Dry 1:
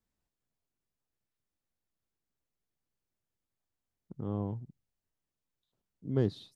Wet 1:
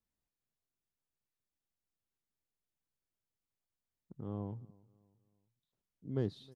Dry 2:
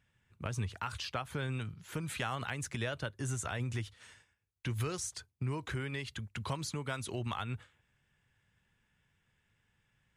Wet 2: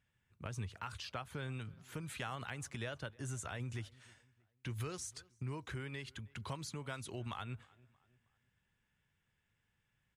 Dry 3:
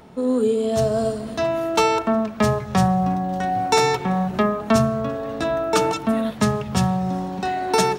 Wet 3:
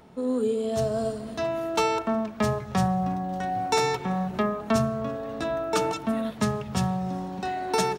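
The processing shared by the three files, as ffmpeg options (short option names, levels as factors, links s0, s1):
-filter_complex "[0:a]asplit=2[s0][s1];[s1]adelay=315,lowpass=f=3200:p=1,volume=0.0631,asplit=2[s2][s3];[s3]adelay=315,lowpass=f=3200:p=1,volume=0.43,asplit=2[s4][s5];[s5]adelay=315,lowpass=f=3200:p=1,volume=0.43[s6];[s0][s2][s4][s6]amix=inputs=4:normalize=0,volume=0.501"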